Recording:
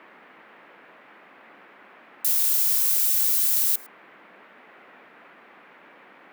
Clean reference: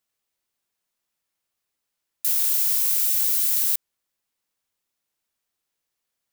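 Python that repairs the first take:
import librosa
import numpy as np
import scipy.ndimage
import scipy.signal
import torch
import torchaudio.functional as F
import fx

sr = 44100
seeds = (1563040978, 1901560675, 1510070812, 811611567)

y = fx.noise_reduce(x, sr, print_start_s=5.34, print_end_s=5.84, reduce_db=30.0)
y = fx.fix_echo_inverse(y, sr, delay_ms=107, level_db=-24.0)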